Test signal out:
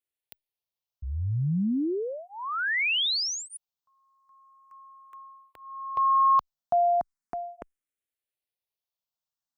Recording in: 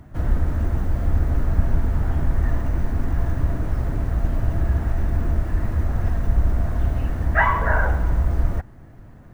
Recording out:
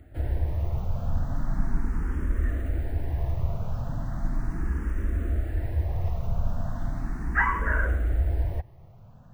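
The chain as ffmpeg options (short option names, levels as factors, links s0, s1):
-filter_complex "[0:a]asplit=2[s0][s1];[s1]afreqshift=0.37[s2];[s0][s2]amix=inputs=2:normalize=1,volume=0.668"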